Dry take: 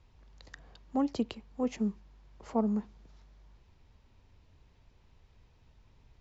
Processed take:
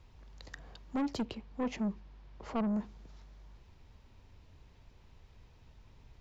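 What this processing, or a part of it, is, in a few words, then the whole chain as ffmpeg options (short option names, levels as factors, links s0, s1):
saturation between pre-emphasis and de-emphasis: -filter_complex "[0:a]highshelf=f=5500:g=8,asoftclip=type=tanh:threshold=0.0237,highshelf=f=5500:g=-8,asettb=1/sr,asplit=3[s0][s1][s2];[s0]atrim=end=1.254[s3];[s1]atrim=start=1.25:end=2.74,asetpts=PTS-STARTPTS,afade=t=in:d=0.004:c=qsin,afade=t=out:st=1.486:d=0.004:c=qsin,lowpass=5100[s4];[s2]atrim=start=2.736[s5];[s3][s4]acrossfade=d=0.004:c1=hsin:c2=qsin[s6];[s6][s5]acrossfade=d=0.004:c1=qsin:c2=hsin,volume=1.5"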